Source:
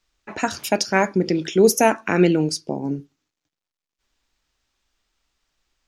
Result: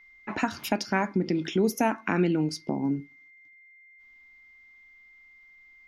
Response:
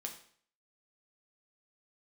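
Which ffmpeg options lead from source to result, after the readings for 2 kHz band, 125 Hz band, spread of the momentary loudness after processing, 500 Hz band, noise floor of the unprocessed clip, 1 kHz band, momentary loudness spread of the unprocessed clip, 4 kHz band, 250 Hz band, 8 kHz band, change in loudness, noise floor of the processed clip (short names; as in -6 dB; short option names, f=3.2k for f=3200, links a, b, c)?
-7.0 dB, -5.5 dB, 6 LU, -10.5 dB, under -85 dBFS, -7.0 dB, 11 LU, -8.5 dB, -5.0 dB, -14.0 dB, -7.5 dB, -55 dBFS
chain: -af "aeval=exprs='val(0)+0.00251*sin(2*PI*2100*n/s)':c=same,equalizer=f=250:t=o:w=1:g=6,equalizer=f=500:t=o:w=1:g=-6,equalizer=f=1k:t=o:w=1:g=4,equalizer=f=8k:t=o:w=1:g=-11,acompressor=threshold=-28dB:ratio=2"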